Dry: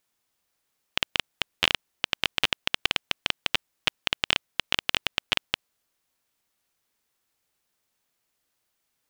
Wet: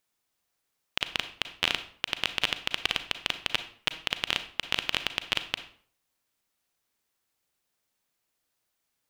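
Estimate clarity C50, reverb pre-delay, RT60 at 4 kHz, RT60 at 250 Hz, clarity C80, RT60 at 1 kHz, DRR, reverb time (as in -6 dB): 12.0 dB, 33 ms, 0.40 s, 0.50 s, 16.0 dB, 0.50 s, 10.0 dB, 0.50 s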